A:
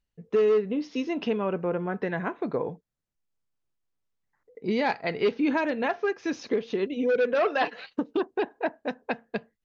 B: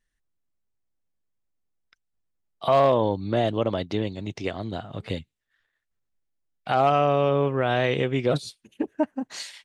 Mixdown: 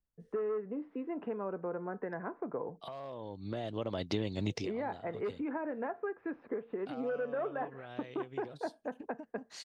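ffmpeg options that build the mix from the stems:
ffmpeg -i stem1.wav -i stem2.wav -filter_complex "[0:a]lowpass=frequency=1600:width=0.5412,lowpass=frequency=1600:width=1.3066,acrossover=split=230|670[link_01][link_02][link_03];[link_01]acompressor=threshold=-47dB:ratio=4[link_04];[link_02]acompressor=threshold=-31dB:ratio=4[link_05];[link_03]acompressor=threshold=-35dB:ratio=4[link_06];[link_04][link_05][link_06]amix=inputs=3:normalize=0,volume=-6dB,asplit=2[link_07][link_08];[1:a]equalizer=frequency=5100:width=2.8:gain=4.5,acompressor=threshold=-31dB:ratio=8,adelay=200,volume=2.5dB[link_09];[link_08]apad=whole_len=433965[link_10];[link_09][link_10]sidechaincompress=threshold=-53dB:ratio=5:attack=49:release=1180[link_11];[link_07][link_11]amix=inputs=2:normalize=0" out.wav

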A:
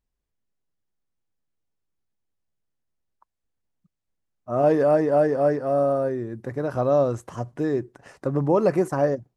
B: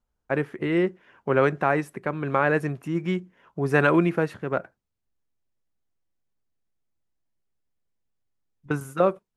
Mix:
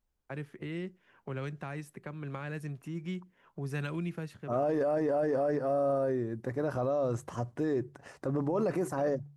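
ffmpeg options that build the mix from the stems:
ffmpeg -i stem1.wav -i stem2.wav -filter_complex "[0:a]bandreject=frequency=47.87:width_type=h:width=4,bandreject=frequency=95.74:width_type=h:width=4,bandreject=frequency=143.61:width_type=h:width=4,volume=-3dB,asplit=2[link_01][link_02];[1:a]acrossover=split=190|3000[link_03][link_04][link_05];[link_04]acompressor=threshold=-39dB:ratio=3[link_06];[link_03][link_06][link_05]amix=inputs=3:normalize=0,volume=-6.5dB[link_07];[link_02]apad=whole_len=413041[link_08];[link_07][link_08]sidechaincompress=threshold=-27dB:ratio=8:attack=16:release=390[link_09];[link_01][link_09]amix=inputs=2:normalize=0,alimiter=limit=-22.5dB:level=0:latency=1:release=12" out.wav

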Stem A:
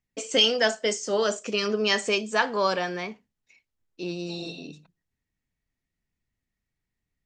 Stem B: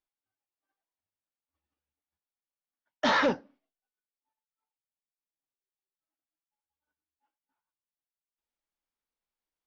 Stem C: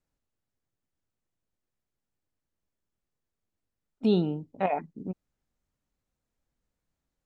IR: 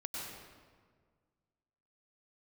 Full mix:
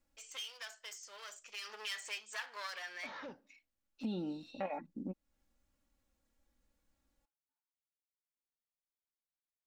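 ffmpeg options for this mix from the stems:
-filter_complex "[0:a]aeval=exprs='clip(val(0),-1,0.0335)':channel_layout=same,highpass=1500,equalizer=frequency=6900:width_type=o:width=1.5:gain=-3,volume=-2dB,afade=type=in:start_time=1.49:duration=0.32:silence=0.281838,afade=type=out:start_time=3.5:duration=0.35:silence=0.334965,asplit=2[link_01][link_02];[1:a]acompressor=threshold=-34dB:ratio=2,volume=-14.5dB[link_03];[2:a]aecho=1:1:3.6:0.7,volume=2dB[link_04];[link_02]apad=whole_len=319941[link_05];[link_04][link_05]sidechaincompress=threshold=-51dB:ratio=8:attack=6.8:release=1150[link_06];[link_01][link_03][link_06]amix=inputs=3:normalize=0,acompressor=threshold=-43dB:ratio=2.5"

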